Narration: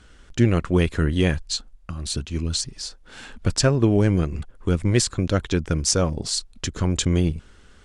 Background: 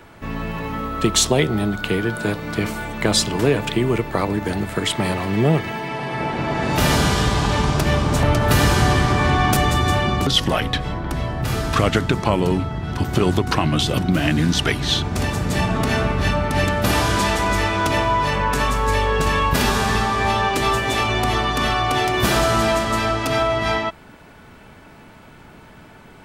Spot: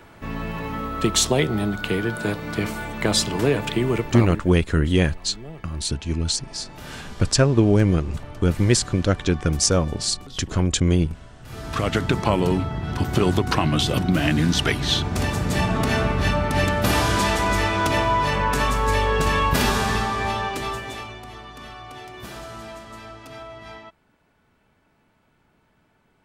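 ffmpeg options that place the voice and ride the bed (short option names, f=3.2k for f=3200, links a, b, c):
-filter_complex "[0:a]adelay=3750,volume=1.5dB[a];[1:a]volume=18dB,afade=t=out:st=4:d=0.5:silence=0.105925,afade=t=in:st=11.44:d=0.69:silence=0.0944061,afade=t=out:st=19.63:d=1.57:silence=0.125893[b];[a][b]amix=inputs=2:normalize=0"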